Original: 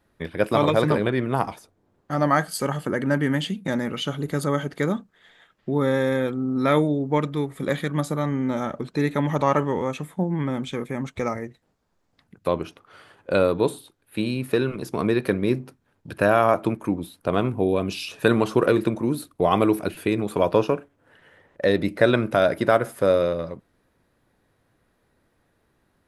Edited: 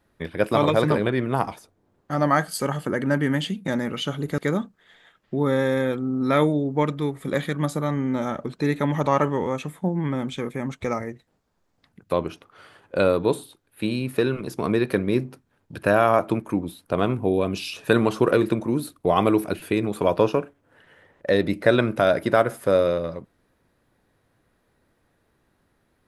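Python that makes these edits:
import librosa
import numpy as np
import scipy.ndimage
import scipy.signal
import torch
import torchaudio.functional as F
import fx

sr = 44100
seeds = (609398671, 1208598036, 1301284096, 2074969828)

y = fx.edit(x, sr, fx.cut(start_s=4.38, length_s=0.35), tone=tone)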